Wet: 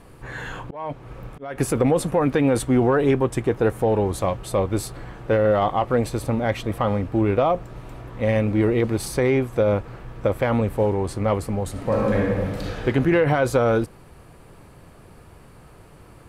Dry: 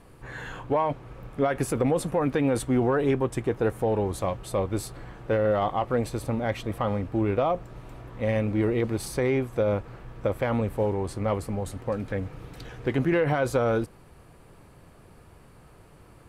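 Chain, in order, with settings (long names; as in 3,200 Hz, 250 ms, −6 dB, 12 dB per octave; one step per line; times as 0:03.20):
0:00.63–0:01.58: volume swells 416 ms
0:11.71–0:12.85: thrown reverb, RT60 1.7 s, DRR −4.5 dB
level +5 dB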